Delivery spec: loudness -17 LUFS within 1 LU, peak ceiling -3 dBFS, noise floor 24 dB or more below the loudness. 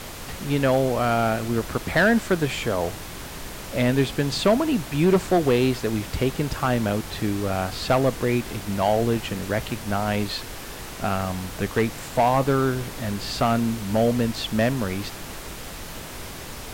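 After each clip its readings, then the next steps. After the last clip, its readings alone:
clipped samples 0.5%; clipping level -12.5 dBFS; noise floor -37 dBFS; noise floor target -48 dBFS; loudness -23.5 LUFS; peak level -12.5 dBFS; loudness target -17.0 LUFS
-> clip repair -12.5 dBFS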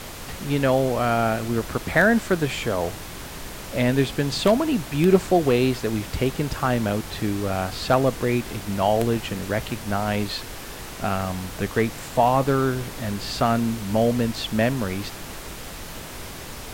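clipped samples 0.0%; noise floor -37 dBFS; noise floor target -47 dBFS
-> noise print and reduce 10 dB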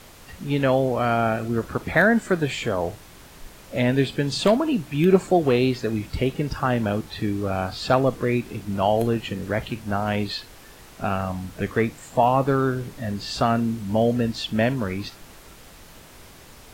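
noise floor -47 dBFS; noise floor target -48 dBFS
-> noise print and reduce 6 dB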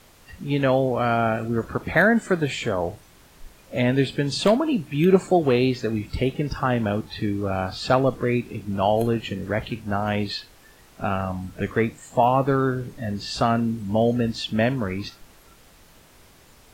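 noise floor -52 dBFS; loudness -23.5 LUFS; peak level -4.5 dBFS; loudness target -17.0 LUFS
-> trim +6.5 dB; peak limiter -3 dBFS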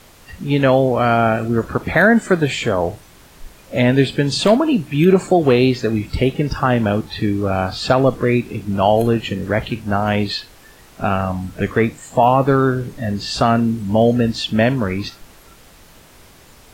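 loudness -17.5 LUFS; peak level -3.0 dBFS; noise floor -46 dBFS

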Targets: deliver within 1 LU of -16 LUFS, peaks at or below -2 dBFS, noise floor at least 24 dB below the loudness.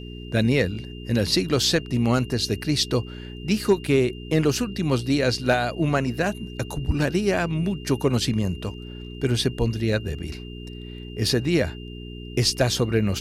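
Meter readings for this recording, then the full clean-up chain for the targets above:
hum 60 Hz; highest harmonic 420 Hz; hum level -35 dBFS; steady tone 2.8 kHz; tone level -44 dBFS; loudness -23.5 LUFS; peak level -7.5 dBFS; loudness target -16.0 LUFS
-> de-hum 60 Hz, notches 7; band-stop 2.8 kHz, Q 30; trim +7.5 dB; peak limiter -2 dBFS

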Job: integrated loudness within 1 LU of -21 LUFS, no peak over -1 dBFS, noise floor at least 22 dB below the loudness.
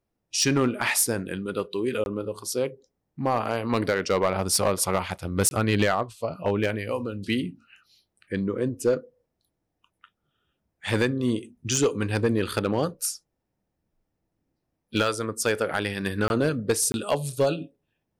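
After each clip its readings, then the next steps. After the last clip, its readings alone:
clipped samples 0.5%; clipping level -15.0 dBFS; dropouts 4; longest dropout 21 ms; loudness -26.0 LUFS; peak level -15.0 dBFS; loudness target -21.0 LUFS
-> clip repair -15 dBFS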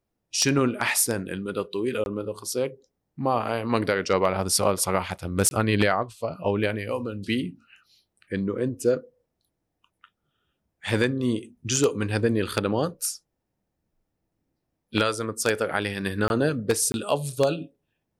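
clipped samples 0.0%; dropouts 4; longest dropout 21 ms
-> interpolate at 2.04/5.49/16.28/16.92 s, 21 ms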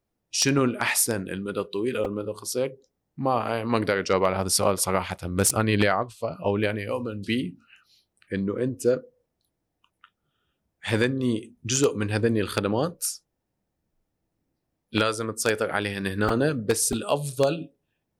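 dropouts 0; loudness -25.5 LUFS; peak level -6.0 dBFS; loudness target -21.0 LUFS
-> trim +4.5 dB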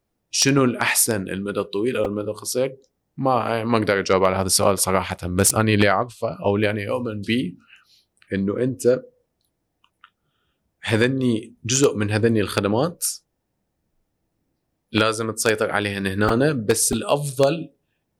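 loudness -21.0 LUFS; peak level -1.5 dBFS; noise floor -75 dBFS

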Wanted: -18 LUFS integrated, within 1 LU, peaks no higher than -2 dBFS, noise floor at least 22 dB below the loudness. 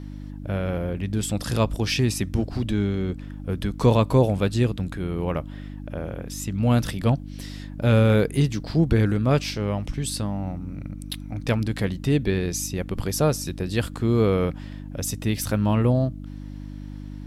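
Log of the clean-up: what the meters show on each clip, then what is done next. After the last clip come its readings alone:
hum 50 Hz; highest harmonic 300 Hz; hum level -34 dBFS; loudness -24.0 LUFS; peak level -7.0 dBFS; loudness target -18.0 LUFS
-> de-hum 50 Hz, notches 6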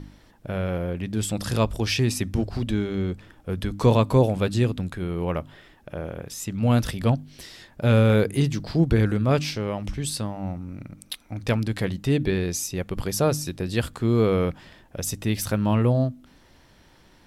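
hum not found; loudness -24.5 LUFS; peak level -6.5 dBFS; loudness target -18.0 LUFS
-> trim +6.5 dB; peak limiter -2 dBFS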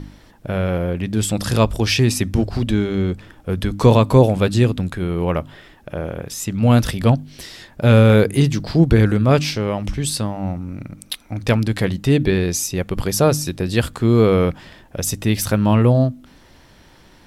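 loudness -18.0 LUFS; peak level -2.0 dBFS; noise floor -49 dBFS

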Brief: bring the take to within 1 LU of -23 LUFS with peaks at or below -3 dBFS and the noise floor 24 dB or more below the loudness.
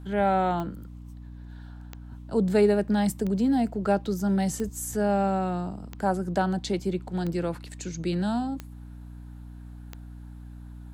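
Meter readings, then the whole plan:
clicks found 8; hum 60 Hz; highest harmonic 300 Hz; hum level -40 dBFS; loudness -27.0 LUFS; peak level -10.5 dBFS; loudness target -23.0 LUFS
-> de-click; hum notches 60/120/180/240/300 Hz; trim +4 dB

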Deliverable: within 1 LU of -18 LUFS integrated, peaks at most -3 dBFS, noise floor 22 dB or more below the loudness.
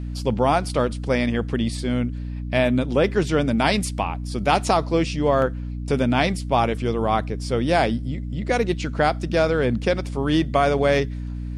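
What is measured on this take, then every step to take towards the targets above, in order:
hum 60 Hz; highest harmonic 300 Hz; hum level -27 dBFS; loudness -22.0 LUFS; peak level -4.5 dBFS; loudness target -18.0 LUFS
-> hum notches 60/120/180/240/300 Hz; trim +4 dB; peak limiter -3 dBFS

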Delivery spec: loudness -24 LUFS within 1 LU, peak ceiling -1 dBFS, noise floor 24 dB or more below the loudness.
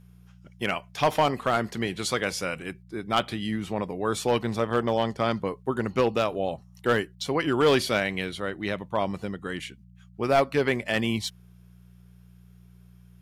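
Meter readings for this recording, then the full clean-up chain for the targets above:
clipped samples 0.4%; clipping level -14.0 dBFS; hum 60 Hz; highest harmonic 180 Hz; hum level -50 dBFS; loudness -27.0 LUFS; peak level -14.0 dBFS; loudness target -24.0 LUFS
-> clip repair -14 dBFS; de-hum 60 Hz, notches 3; trim +3 dB

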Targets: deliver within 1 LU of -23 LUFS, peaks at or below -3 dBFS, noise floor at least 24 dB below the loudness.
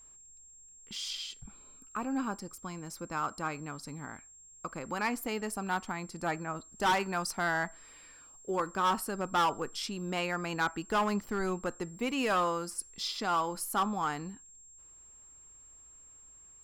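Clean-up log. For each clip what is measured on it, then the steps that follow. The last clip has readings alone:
clipped samples 1.2%; clipping level -23.5 dBFS; steady tone 7.5 kHz; tone level -53 dBFS; loudness -33.5 LUFS; peak level -23.5 dBFS; loudness target -23.0 LUFS
-> clip repair -23.5 dBFS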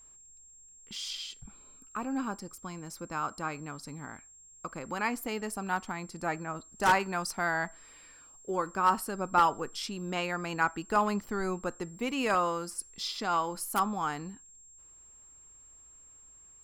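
clipped samples 0.0%; steady tone 7.5 kHz; tone level -53 dBFS
-> band-stop 7.5 kHz, Q 30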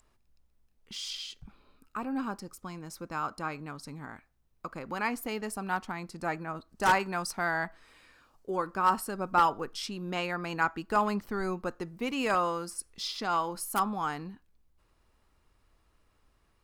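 steady tone not found; loudness -32.0 LUFS; peak level -14.5 dBFS; loudness target -23.0 LUFS
-> trim +9 dB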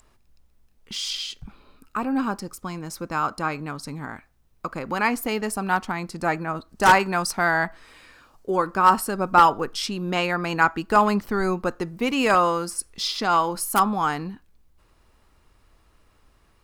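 loudness -23.0 LUFS; peak level -5.5 dBFS; noise floor -61 dBFS

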